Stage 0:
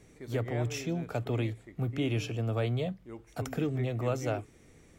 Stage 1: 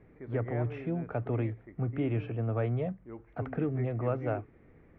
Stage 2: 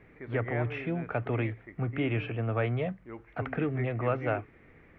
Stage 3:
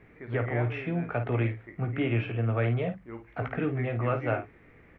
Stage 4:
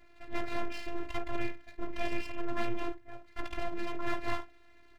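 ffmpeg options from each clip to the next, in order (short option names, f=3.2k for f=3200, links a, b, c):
-af "lowpass=f=2k:w=0.5412,lowpass=f=2k:w=1.3066"
-af "equalizer=f=2.6k:t=o:w=2.4:g=11.5"
-af "aecho=1:1:17|52:0.398|0.355"
-af "aeval=exprs='abs(val(0))':c=same,afftfilt=real='hypot(re,im)*cos(PI*b)':imag='0':win_size=512:overlap=0.75"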